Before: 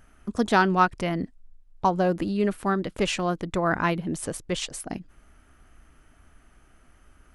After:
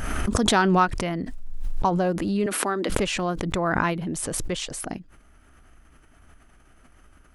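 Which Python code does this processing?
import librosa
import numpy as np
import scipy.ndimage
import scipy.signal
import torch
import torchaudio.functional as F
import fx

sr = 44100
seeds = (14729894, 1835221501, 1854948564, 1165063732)

y = fx.highpass(x, sr, hz=250.0, slope=24, at=(2.46, 2.9))
y = fx.pre_swell(y, sr, db_per_s=22.0)
y = y * 10.0 ** (-1.0 / 20.0)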